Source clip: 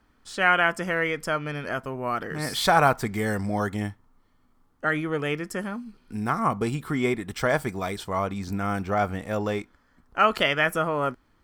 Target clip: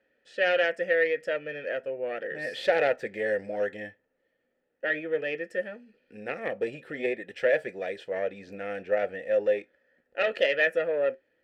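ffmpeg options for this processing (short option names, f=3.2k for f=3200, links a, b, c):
-filter_complex "[0:a]flanger=delay=5.4:depth=1.2:regen=-74:speed=0.41:shape=sinusoidal,aeval=exprs='0.316*(cos(1*acos(clip(val(0)/0.316,-1,1)))-cos(1*PI/2))+0.0891*(cos(4*acos(clip(val(0)/0.316,-1,1)))-cos(4*PI/2))+0.0355*(cos(5*acos(clip(val(0)/0.316,-1,1)))-cos(5*PI/2))':c=same,asplit=3[a][b][c];[a]bandpass=f=530:t=q:w=8,volume=0dB[d];[b]bandpass=f=1.84k:t=q:w=8,volume=-6dB[e];[c]bandpass=f=2.48k:t=q:w=8,volume=-9dB[f];[d][e][f]amix=inputs=3:normalize=0,volume=9dB"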